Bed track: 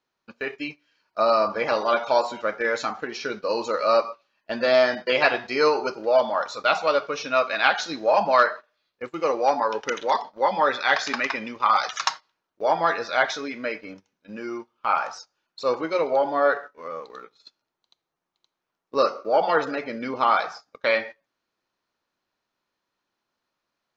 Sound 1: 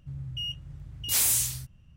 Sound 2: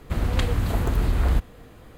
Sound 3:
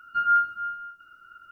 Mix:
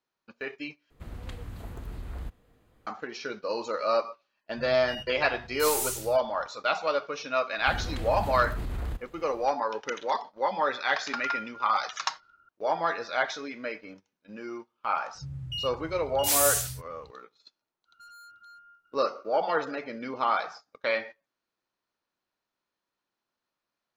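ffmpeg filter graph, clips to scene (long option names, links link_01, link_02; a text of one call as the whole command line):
ffmpeg -i bed.wav -i cue0.wav -i cue1.wav -i cue2.wav -filter_complex "[2:a]asplit=2[link_01][link_02];[1:a]asplit=2[link_03][link_04];[3:a]asplit=2[link_05][link_06];[0:a]volume=-6dB[link_07];[link_03]aeval=exprs='if(lt(val(0),0),0.708*val(0),val(0))':channel_layout=same[link_08];[link_02]alimiter=limit=-18.5dB:level=0:latency=1:release=16[link_09];[link_05]lowpass=1200[link_10];[link_04]highpass=50[link_11];[link_06]volume=33dB,asoftclip=hard,volume=-33dB[link_12];[link_07]asplit=2[link_13][link_14];[link_13]atrim=end=0.904[link_15];[link_01]atrim=end=1.97,asetpts=PTS-STARTPTS,volume=-17dB[link_16];[link_14]atrim=start=2.866[link_17];[link_08]atrim=end=1.96,asetpts=PTS-STARTPTS,volume=-5.5dB,afade=type=in:duration=0.004:curve=hsin,afade=type=out:start_time=1.956:duration=0.004:curve=hsin,adelay=4510[link_18];[link_09]atrim=end=1.97,asetpts=PTS-STARTPTS,volume=-8dB,afade=type=in:duration=0.05,afade=type=out:start_time=1.92:duration=0.05,adelay=7570[link_19];[link_10]atrim=end=1.51,asetpts=PTS-STARTPTS,volume=-7.5dB,afade=type=in:duration=0.004:curve=hsin,afade=type=out:start_time=1.506:duration=0.004:curve=hsin,adelay=484218S[link_20];[link_11]atrim=end=1.96,asetpts=PTS-STARTPTS,volume=-0.5dB,afade=type=in:duration=0.004:curve=hsin,afade=type=out:start_time=1.956:duration=0.004:curve=hsin,adelay=15150[link_21];[link_12]atrim=end=1.51,asetpts=PTS-STARTPTS,volume=-16.5dB,afade=type=in:duration=0.05,afade=type=out:start_time=1.46:duration=0.05,adelay=17850[link_22];[link_15][link_16]acrossfade=duration=0.004:curve1=hsin:curve2=hsin[link_23];[link_23][link_17]acrossfade=duration=0.004:curve1=hsin:curve2=hsin[link_24];[link_24][link_18][link_19][link_20][link_21][link_22]amix=inputs=6:normalize=0" out.wav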